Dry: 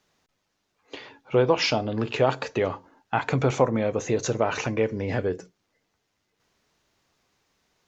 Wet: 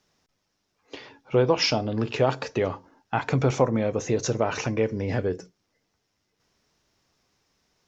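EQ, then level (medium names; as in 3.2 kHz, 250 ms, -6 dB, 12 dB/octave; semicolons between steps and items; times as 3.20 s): bass shelf 360 Hz +4 dB; peaking EQ 5.4 kHz +7.5 dB 0.29 oct; -2.0 dB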